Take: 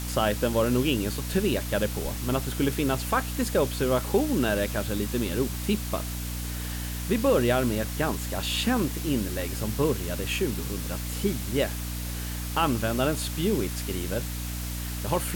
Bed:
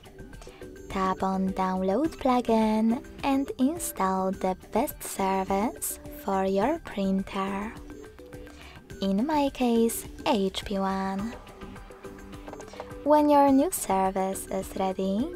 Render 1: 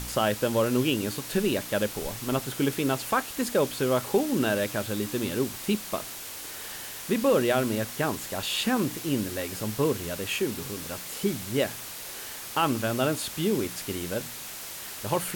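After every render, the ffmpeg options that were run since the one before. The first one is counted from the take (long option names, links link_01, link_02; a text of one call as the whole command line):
ffmpeg -i in.wav -af "bandreject=frequency=60:width_type=h:width=4,bandreject=frequency=120:width_type=h:width=4,bandreject=frequency=180:width_type=h:width=4,bandreject=frequency=240:width_type=h:width=4,bandreject=frequency=300:width_type=h:width=4" out.wav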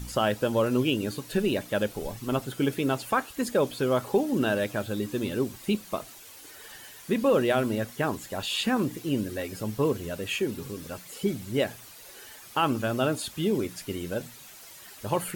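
ffmpeg -i in.wav -af "afftdn=noise_reduction=11:noise_floor=-39" out.wav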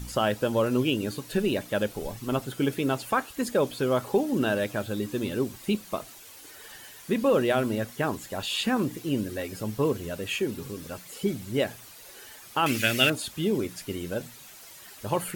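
ffmpeg -i in.wav -filter_complex "[0:a]asettb=1/sr,asplit=3[link_01][link_02][link_03];[link_01]atrim=end=12.664[link_04];[link_02]atrim=start=12.66:end=13.1,asetpts=PTS-STARTPTS,afade=type=in:duration=0.004:curve=qsin,afade=type=out:start_time=0.436:duration=0.004:curve=qsin,highshelf=frequency=1500:width_type=q:width=3:gain=11.5[link_05];[link_03]atrim=start=13.096[link_06];[link_04][link_05]acrossfade=duration=0.004:curve1=hsin:curve2=qsin[link_07];[link_07][link_06]acrossfade=duration=0.004:curve1=qsin:curve2=hsin" out.wav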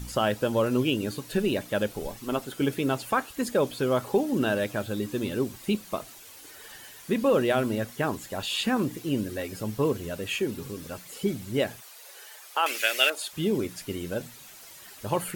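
ffmpeg -i in.wav -filter_complex "[0:a]asettb=1/sr,asplit=3[link_01][link_02][link_03];[link_01]atrim=end=2.084[link_04];[link_02]atrim=start=2.08:end=2.61,asetpts=PTS-STARTPTS,afade=type=in:duration=0.004:curve=qsin,afade=type=out:start_time=0.526:duration=0.004:curve=qsin,equalizer=frequency=120:width=1.5:gain=-9.5[link_05];[link_03]atrim=start=2.606[link_06];[link_04][link_05]acrossfade=duration=0.004:curve1=hsin:curve2=qsin[link_07];[link_07][link_06]acrossfade=duration=0.004:curve1=qsin:curve2=hsin,asplit=3[link_08][link_09][link_10];[link_08]afade=type=out:start_time=11.8:duration=0.02[link_11];[link_09]highpass=frequency=470:width=0.5412,highpass=frequency=470:width=1.3066,afade=type=in:start_time=11.8:duration=0.02,afade=type=out:start_time=13.32:duration=0.02[link_12];[link_10]afade=type=in:start_time=13.32:duration=0.02[link_13];[link_11][link_12][link_13]amix=inputs=3:normalize=0" out.wav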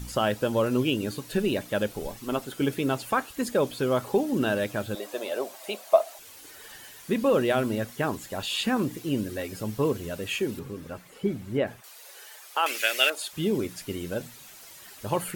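ffmpeg -i in.wav -filter_complex "[0:a]asettb=1/sr,asplit=3[link_01][link_02][link_03];[link_01]atrim=end=4.954[link_04];[link_02]atrim=start=4.95:end=6.19,asetpts=PTS-STARTPTS,afade=type=in:duration=0.004:curve=qsin,afade=type=out:start_time=1.236:duration=0.004:curve=qsin,highpass=frequency=640:width_type=q:width=7[link_05];[link_03]atrim=start=6.186[link_06];[link_04][link_05]acrossfade=duration=0.004:curve1=hsin:curve2=qsin[link_07];[link_07][link_06]acrossfade=duration=0.004:curve1=qsin:curve2=hsin,asettb=1/sr,asplit=3[link_08][link_09][link_10];[link_08]atrim=end=10.594[link_11];[link_09]atrim=start=10.59:end=11.84,asetpts=PTS-STARTPTS,afade=type=in:duration=0.004:curve=qsin,afade=type=out:start_time=1.246:duration=0.004:curve=qsin,acrossover=split=2500[link_12][link_13];[link_13]acompressor=threshold=-55dB:ratio=4:attack=1:release=60[link_14];[link_12][link_14]amix=inputs=2:normalize=0[link_15];[link_10]atrim=start=11.836[link_16];[link_11][link_15]acrossfade=duration=0.004:curve1=hsin:curve2=qsin[link_17];[link_17][link_16]acrossfade=duration=0.004:curve1=qsin:curve2=hsin" out.wav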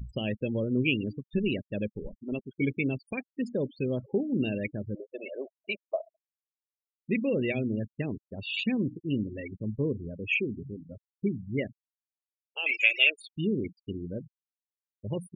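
ffmpeg -i in.wav -af "afftfilt=real='re*gte(hypot(re,im),0.0501)':imag='im*gte(hypot(re,im),0.0501)':win_size=1024:overlap=0.75,firequalizer=gain_entry='entry(200,0);entry(310,-3);entry(510,-7);entry(800,-18);entry(1400,-30);entry(2200,14);entry(3200,-8);entry(5000,-8)':delay=0.05:min_phase=1" out.wav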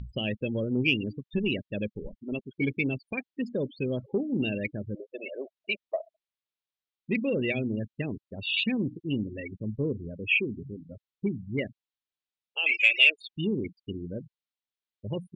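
ffmpeg -i in.wav -af "asoftclip=type=tanh:threshold=-13dB,lowpass=frequency=3700:width_type=q:width=2" out.wav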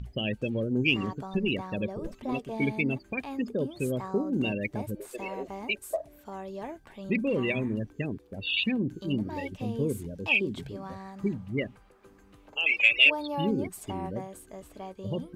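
ffmpeg -i in.wav -i bed.wav -filter_complex "[1:a]volume=-13.5dB[link_01];[0:a][link_01]amix=inputs=2:normalize=0" out.wav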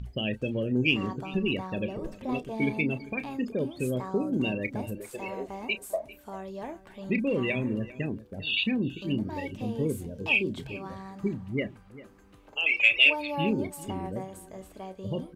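ffmpeg -i in.wav -filter_complex "[0:a]asplit=2[link_01][link_02];[link_02]adelay=32,volume=-13dB[link_03];[link_01][link_03]amix=inputs=2:normalize=0,asplit=2[link_04][link_05];[link_05]adelay=396.5,volume=-17dB,highshelf=frequency=4000:gain=-8.92[link_06];[link_04][link_06]amix=inputs=2:normalize=0" out.wav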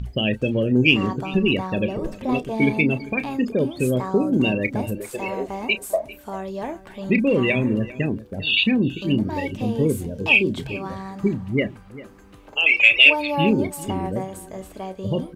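ffmpeg -i in.wav -af "volume=8.5dB,alimiter=limit=-2dB:level=0:latency=1" out.wav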